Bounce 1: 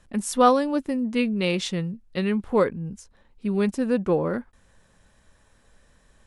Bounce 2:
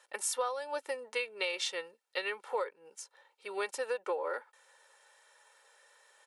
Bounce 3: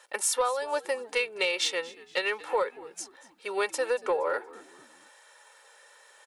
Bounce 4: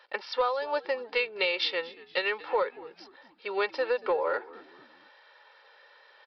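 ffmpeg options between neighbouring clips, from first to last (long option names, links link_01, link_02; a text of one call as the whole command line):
ffmpeg -i in.wav -af "highpass=frequency=580:width=0.5412,highpass=frequency=580:width=1.3066,aecho=1:1:2.2:0.61,acompressor=threshold=-30dB:ratio=16" out.wav
ffmpeg -i in.wav -filter_complex "[0:a]asoftclip=type=tanh:threshold=-22dB,asplit=4[link_01][link_02][link_03][link_04];[link_02]adelay=234,afreqshift=-75,volume=-19.5dB[link_05];[link_03]adelay=468,afreqshift=-150,volume=-28.1dB[link_06];[link_04]adelay=702,afreqshift=-225,volume=-36.8dB[link_07];[link_01][link_05][link_06][link_07]amix=inputs=4:normalize=0,volume=7.5dB" out.wav
ffmpeg -i in.wav -af "aresample=11025,aresample=44100" out.wav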